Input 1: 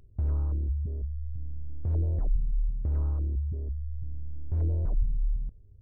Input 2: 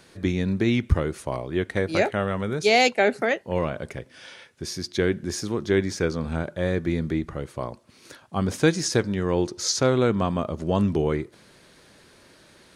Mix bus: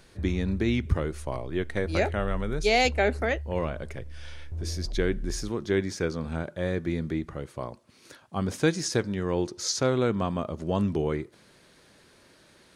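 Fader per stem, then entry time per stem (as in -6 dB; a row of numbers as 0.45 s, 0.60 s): -6.5 dB, -4.0 dB; 0.00 s, 0.00 s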